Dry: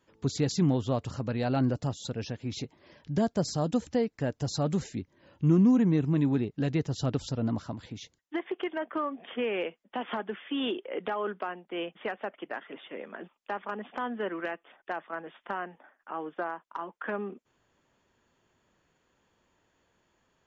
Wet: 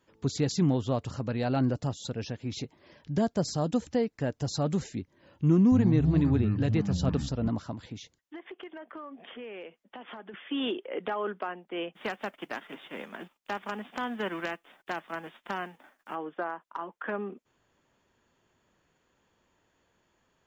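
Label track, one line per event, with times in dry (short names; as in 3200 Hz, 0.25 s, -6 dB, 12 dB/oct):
5.440000	7.490000	echoes that change speed 0.276 s, each echo -7 st, echoes 2, each echo -6 dB
8.010000	10.340000	compressor 3:1, threshold -43 dBFS
11.940000	16.140000	spectral whitening exponent 0.6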